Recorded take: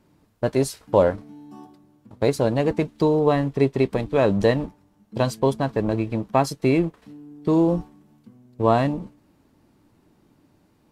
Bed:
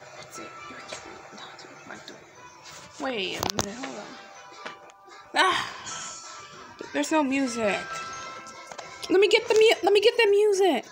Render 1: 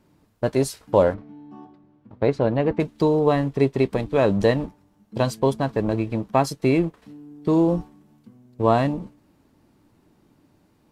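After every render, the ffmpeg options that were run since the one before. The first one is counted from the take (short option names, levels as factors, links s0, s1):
-filter_complex "[0:a]asettb=1/sr,asplit=3[s0][s1][s2];[s0]atrim=end=1.144[s3];[s1]atrim=start=1.14:end=2.8,asetpts=PTS-STARTPTS,afade=t=in:d=0.004:c=qsin,afade=t=out:st=1.656:d=0.004:c=qsin,lowpass=2700[s4];[s2]atrim=start=2.796[s5];[s3][s4]acrossfade=d=0.004:c1=hsin:c2=qsin[s6];[s6][s5]acrossfade=d=0.004:c1=qsin:c2=hsin"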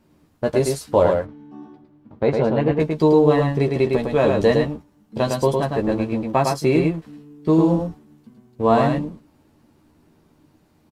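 -filter_complex "[0:a]asplit=2[s0][s1];[s1]adelay=13,volume=0.562[s2];[s0][s2]amix=inputs=2:normalize=0,aecho=1:1:107:0.631"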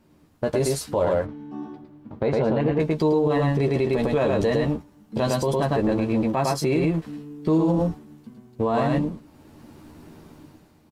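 -af "dynaudnorm=f=100:g=11:m=3.55,alimiter=limit=0.211:level=0:latency=1:release=77"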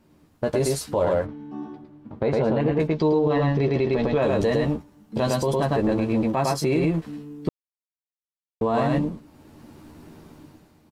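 -filter_complex "[0:a]asettb=1/sr,asplit=3[s0][s1][s2];[s0]atrim=end=1.274[s3];[s1]atrim=start=1.27:end=2.33,asetpts=PTS-STARTPTS,afade=t=in:d=0.004:c=qsin,afade=t=out:st=1.056:d=0.004:c=qsin,highshelf=f=11000:g=-7.5[s4];[s2]atrim=start=2.326[s5];[s3][s4]acrossfade=d=0.004:c1=hsin:c2=qsin[s6];[s6][s5]acrossfade=d=0.004:c1=qsin:c2=hsin,asplit=3[s7][s8][s9];[s7]afade=t=out:st=2.87:d=0.02[s10];[s8]lowpass=f=5700:w=0.5412,lowpass=f=5700:w=1.3066,afade=t=in:st=2.87:d=0.02,afade=t=out:st=4.21:d=0.02[s11];[s9]afade=t=in:st=4.21:d=0.02[s12];[s10][s11][s12]amix=inputs=3:normalize=0,asplit=3[s13][s14][s15];[s13]atrim=end=7.49,asetpts=PTS-STARTPTS,afade=t=out:st=7.486:d=0.004:c=hsin[s16];[s14]atrim=start=7.49:end=8.61,asetpts=PTS-STARTPTS,volume=0[s17];[s15]atrim=start=8.61,asetpts=PTS-STARTPTS,afade=t=in:d=0.004:c=hsin[s18];[s16][s17][s18]concat=n=3:v=0:a=1"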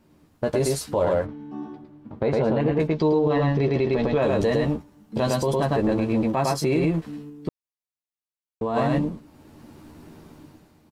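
-filter_complex "[0:a]asplit=3[s0][s1][s2];[s0]atrim=end=7.302[s3];[s1]atrim=start=7.298:end=8.762,asetpts=PTS-STARTPTS,volume=0.668[s4];[s2]atrim=start=8.758[s5];[s3][s4]acrossfade=d=0.004:c1=hsin:c2=hsin[s6];[s6][s5]acrossfade=d=0.004:c1=hsin:c2=hsin"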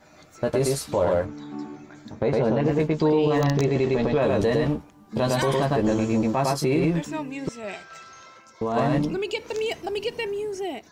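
-filter_complex "[1:a]volume=0.355[s0];[0:a][s0]amix=inputs=2:normalize=0"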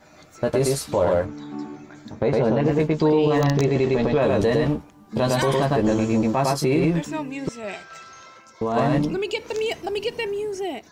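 -af "volume=1.26"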